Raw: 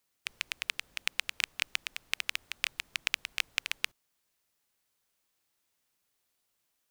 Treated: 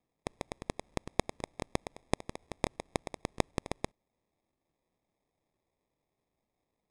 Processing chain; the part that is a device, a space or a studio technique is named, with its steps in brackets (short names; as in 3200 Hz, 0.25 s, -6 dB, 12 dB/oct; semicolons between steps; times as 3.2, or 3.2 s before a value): crushed at another speed (playback speed 2×; sample-and-hold 15×; playback speed 0.5×); gain -2 dB